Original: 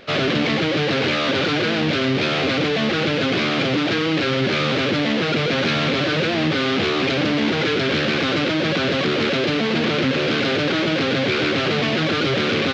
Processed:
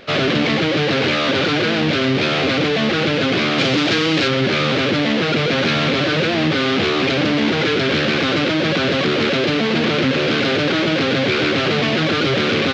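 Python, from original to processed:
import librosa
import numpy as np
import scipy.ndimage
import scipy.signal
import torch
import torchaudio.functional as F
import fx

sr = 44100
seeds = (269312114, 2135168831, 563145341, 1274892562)

y = fx.high_shelf(x, sr, hz=4500.0, db=9.5, at=(3.58, 4.28))
y = y * librosa.db_to_amplitude(2.5)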